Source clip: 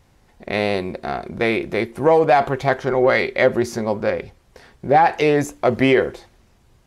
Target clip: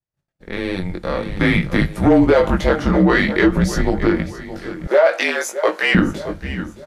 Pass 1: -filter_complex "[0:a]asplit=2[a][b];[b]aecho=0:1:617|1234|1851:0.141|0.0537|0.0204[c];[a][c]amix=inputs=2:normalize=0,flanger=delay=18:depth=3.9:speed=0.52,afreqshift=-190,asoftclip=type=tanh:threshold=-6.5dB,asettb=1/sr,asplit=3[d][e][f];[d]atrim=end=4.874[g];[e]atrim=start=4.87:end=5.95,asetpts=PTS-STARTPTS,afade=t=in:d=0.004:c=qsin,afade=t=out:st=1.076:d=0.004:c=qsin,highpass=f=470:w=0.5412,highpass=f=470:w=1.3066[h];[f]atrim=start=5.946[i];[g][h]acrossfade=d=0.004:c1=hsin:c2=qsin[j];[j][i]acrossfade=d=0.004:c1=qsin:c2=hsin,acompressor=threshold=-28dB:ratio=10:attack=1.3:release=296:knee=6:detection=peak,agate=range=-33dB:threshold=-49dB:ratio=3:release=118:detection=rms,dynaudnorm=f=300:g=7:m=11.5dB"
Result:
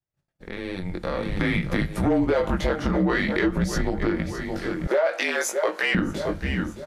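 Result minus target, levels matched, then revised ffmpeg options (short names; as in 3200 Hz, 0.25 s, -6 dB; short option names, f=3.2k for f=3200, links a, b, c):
compressor: peak gain reduction +10.5 dB
-filter_complex "[0:a]asplit=2[a][b];[b]aecho=0:1:617|1234|1851:0.141|0.0537|0.0204[c];[a][c]amix=inputs=2:normalize=0,flanger=delay=18:depth=3.9:speed=0.52,afreqshift=-190,asoftclip=type=tanh:threshold=-6.5dB,asettb=1/sr,asplit=3[d][e][f];[d]atrim=end=4.874[g];[e]atrim=start=4.87:end=5.95,asetpts=PTS-STARTPTS,afade=t=in:d=0.004:c=qsin,afade=t=out:st=1.076:d=0.004:c=qsin,highpass=f=470:w=0.5412,highpass=f=470:w=1.3066[h];[f]atrim=start=5.946[i];[g][h]acrossfade=d=0.004:c1=hsin:c2=qsin[j];[j][i]acrossfade=d=0.004:c1=qsin:c2=hsin,acompressor=threshold=-16.5dB:ratio=10:attack=1.3:release=296:knee=6:detection=peak,agate=range=-33dB:threshold=-49dB:ratio=3:release=118:detection=rms,dynaudnorm=f=300:g=7:m=11.5dB"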